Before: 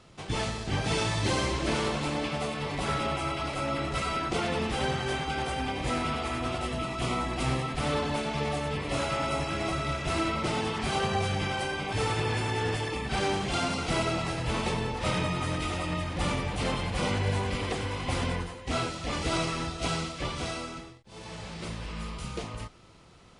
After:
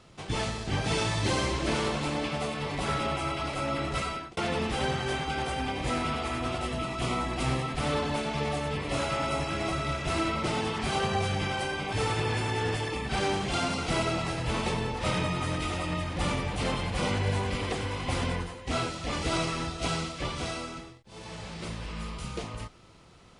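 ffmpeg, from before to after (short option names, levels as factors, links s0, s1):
-filter_complex "[0:a]asplit=2[s0][s1];[s0]atrim=end=4.37,asetpts=PTS-STARTPTS,afade=t=out:st=4:d=0.37[s2];[s1]atrim=start=4.37,asetpts=PTS-STARTPTS,afade=t=in:d=0.004:c=hsin[s3];[s2][s3]concat=n=2:v=0:a=1"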